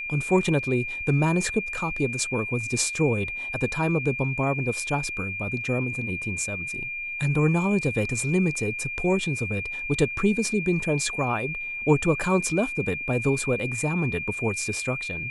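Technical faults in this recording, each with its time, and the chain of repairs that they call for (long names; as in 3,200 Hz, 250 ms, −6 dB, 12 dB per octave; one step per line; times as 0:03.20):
whistle 2,400 Hz −30 dBFS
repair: notch filter 2,400 Hz, Q 30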